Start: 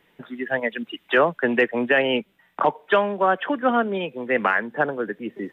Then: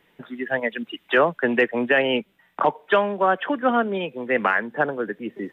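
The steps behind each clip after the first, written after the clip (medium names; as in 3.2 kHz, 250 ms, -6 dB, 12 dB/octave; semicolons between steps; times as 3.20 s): no audible change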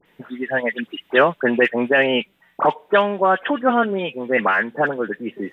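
phase dispersion highs, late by 57 ms, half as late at 1.9 kHz; trim +3 dB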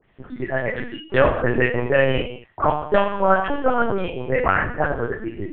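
treble shelf 2.9 kHz -8 dB; gated-style reverb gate 260 ms falling, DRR 2.5 dB; LPC vocoder at 8 kHz pitch kept; trim -2 dB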